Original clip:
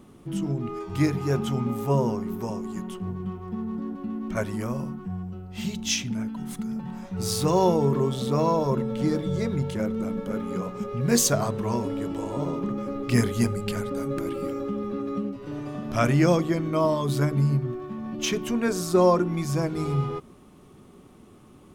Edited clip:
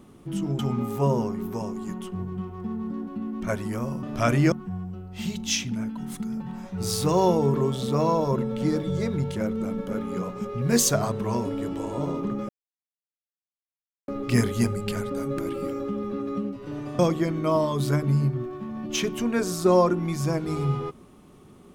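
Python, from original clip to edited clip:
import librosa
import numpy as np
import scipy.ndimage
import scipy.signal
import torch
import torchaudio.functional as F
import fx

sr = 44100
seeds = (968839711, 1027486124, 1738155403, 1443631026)

y = fx.edit(x, sr, fx.cut(start_s=0.59, length_s=0.88),
    fx.insert_silence(at_s=12.88, length_s=1.59),
    fx.move(start_s=15.79, length_s=0.49, to_s=4.91), tone=tone)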